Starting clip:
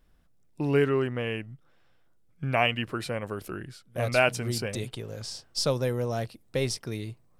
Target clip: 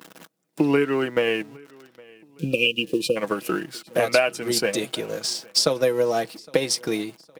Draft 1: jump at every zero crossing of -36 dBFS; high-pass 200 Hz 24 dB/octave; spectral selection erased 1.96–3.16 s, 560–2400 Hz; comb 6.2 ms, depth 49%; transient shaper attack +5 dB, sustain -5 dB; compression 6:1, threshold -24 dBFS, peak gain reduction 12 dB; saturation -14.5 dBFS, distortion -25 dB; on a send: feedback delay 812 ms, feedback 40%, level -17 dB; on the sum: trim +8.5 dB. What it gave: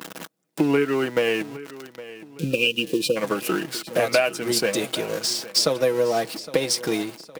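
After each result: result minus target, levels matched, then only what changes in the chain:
saturation: distortion +19 dB; jump at every zero crossing: distortion +9 dB; echo-to-direct +8.5 dB
change: saturation -4 dBFS, distortion -45 dB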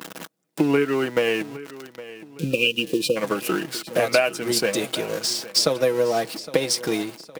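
jump at every zero crossing: distortion +9 dB; echo-to-direct +8.5 dB
change: jump at every zero crossing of -45.5 dBFS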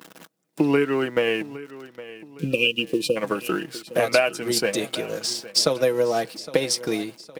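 echo-to-direct +8.5 dB
change: feedback delay 812 ms, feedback 40%, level -25.5 dB

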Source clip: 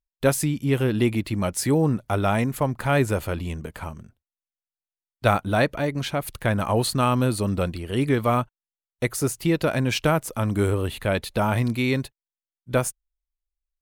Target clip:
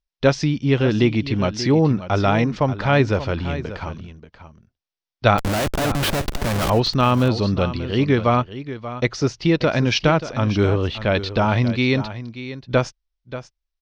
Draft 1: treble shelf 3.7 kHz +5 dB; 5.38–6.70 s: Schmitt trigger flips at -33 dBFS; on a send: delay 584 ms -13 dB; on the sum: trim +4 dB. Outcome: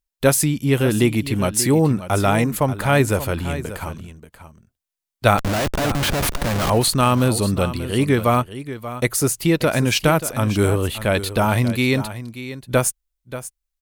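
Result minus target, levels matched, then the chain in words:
8 kHz band +11.5 dB
Chebyshev low-pass 5.7 kHz, order 5; treble shelf 3.7 kHz +5 dB; 5.38–6.70 s: Schmitt trigger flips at -33 dBFS; on a send: delay 584 ms -13 dB; on the sum: trim +4 dB

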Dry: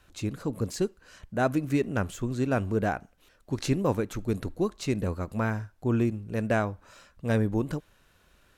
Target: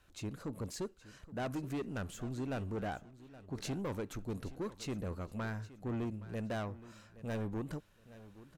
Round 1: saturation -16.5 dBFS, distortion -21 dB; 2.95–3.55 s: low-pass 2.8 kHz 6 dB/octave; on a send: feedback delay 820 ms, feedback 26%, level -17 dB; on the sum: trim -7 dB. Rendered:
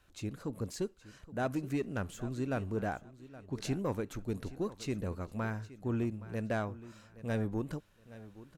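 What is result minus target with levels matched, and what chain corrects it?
saturation: distortion -12 dB
saturation -26.5 dBFS, distortion -9 dB; 2.95–3.55 s: low-pass 2.8 kHz 6 dB/octave; on a send: feedback delay 820 ms, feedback 26%, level -17 dB; on the sum: trim -7 dB

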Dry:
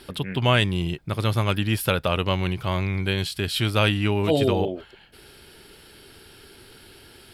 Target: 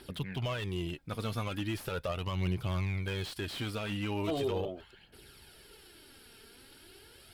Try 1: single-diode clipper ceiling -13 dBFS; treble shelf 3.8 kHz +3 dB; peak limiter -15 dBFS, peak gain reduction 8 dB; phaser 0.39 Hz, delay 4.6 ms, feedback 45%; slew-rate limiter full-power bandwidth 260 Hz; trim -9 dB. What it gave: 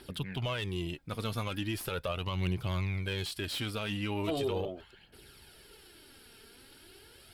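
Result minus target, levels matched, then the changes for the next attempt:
slew-rate limiter: distortion -8 dB
change: slew-rate limiter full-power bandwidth 108.5 Hz

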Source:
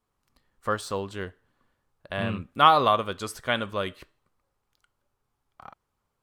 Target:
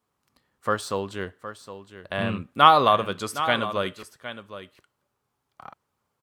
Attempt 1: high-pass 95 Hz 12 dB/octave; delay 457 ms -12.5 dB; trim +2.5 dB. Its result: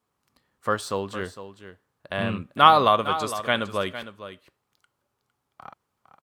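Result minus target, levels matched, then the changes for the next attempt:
echo 307 ms early
change: delay 764 ms -12.5 dB

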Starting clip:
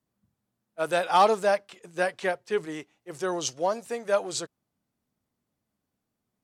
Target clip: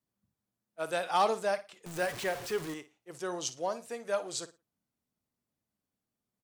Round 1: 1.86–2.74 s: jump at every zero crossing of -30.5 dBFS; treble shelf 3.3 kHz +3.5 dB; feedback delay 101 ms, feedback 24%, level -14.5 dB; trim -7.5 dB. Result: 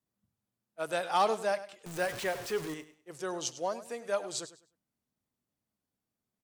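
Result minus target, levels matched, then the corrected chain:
echo 45 ms late
1.86–2.74 s: jump at every zero crossing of -30.5 dBFS; treble shelf 3.3 kHz +3.5 dB; feedback delay 56 ms, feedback 24%, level -14.5 dB; trim -7.5 dB

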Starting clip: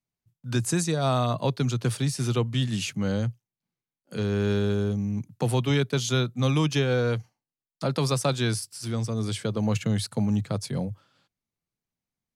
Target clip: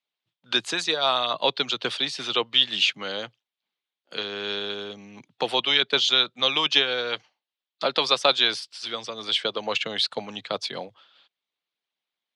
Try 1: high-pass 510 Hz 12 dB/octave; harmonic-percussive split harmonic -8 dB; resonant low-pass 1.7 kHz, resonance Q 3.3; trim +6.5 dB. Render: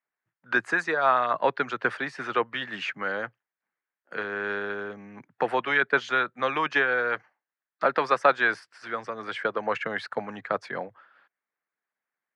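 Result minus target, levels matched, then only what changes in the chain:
4 kHz band -15.5 dB
change: resonant low-pass 3.5 kHz, resonance Q 3.3

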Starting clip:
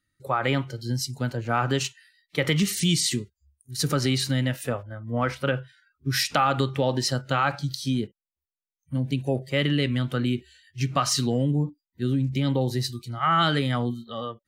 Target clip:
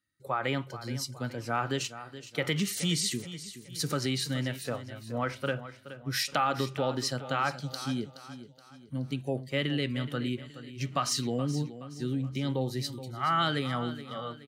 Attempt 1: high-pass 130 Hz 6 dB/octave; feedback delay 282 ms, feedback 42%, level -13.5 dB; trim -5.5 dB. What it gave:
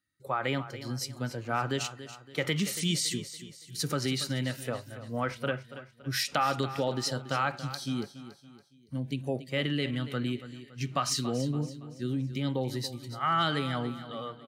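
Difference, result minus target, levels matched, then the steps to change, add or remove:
echo 141 ms early
change: feedback delay 423 ms, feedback 42%, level -13.5 dB

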